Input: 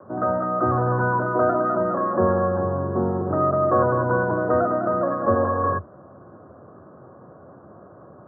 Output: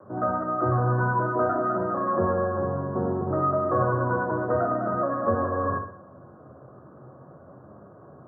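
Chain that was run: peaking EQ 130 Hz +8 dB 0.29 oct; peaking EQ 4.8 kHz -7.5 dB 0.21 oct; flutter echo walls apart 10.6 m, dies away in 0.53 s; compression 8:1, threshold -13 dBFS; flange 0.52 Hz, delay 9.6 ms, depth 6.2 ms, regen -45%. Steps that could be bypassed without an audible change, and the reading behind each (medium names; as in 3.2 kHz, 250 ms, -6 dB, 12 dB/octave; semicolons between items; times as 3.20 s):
peaking EQ 4.8 kHz: input has nothing above 1.7 kHz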